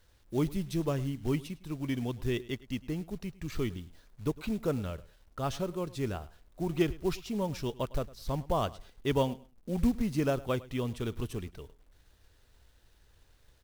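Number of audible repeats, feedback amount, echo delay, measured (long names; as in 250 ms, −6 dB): 2, 20%, 105 ms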